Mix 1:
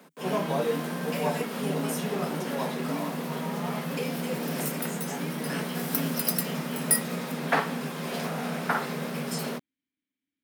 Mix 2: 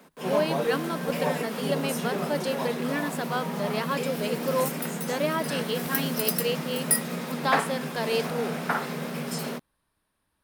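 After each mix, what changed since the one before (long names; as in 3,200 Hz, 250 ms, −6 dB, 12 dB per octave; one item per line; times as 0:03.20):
speech: remove formant filter i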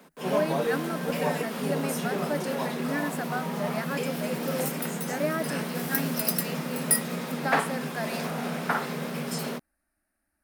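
speech: add phaser with its sweep stopped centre 680 Hz, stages 8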